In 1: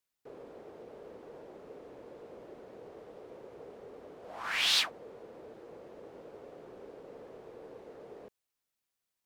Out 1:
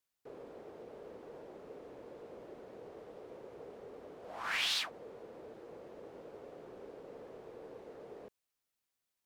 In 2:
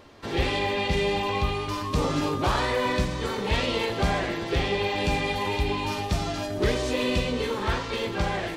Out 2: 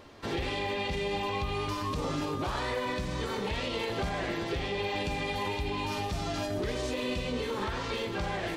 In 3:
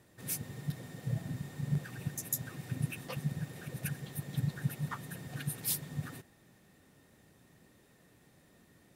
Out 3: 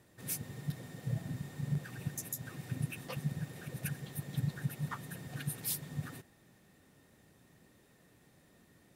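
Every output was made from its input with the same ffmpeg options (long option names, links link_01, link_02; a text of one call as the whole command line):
ffmpeg -i in.wav -af "alimiter=limit=-22.5dB:level=0:latency=1:release=151,volume=-1dB" out.wav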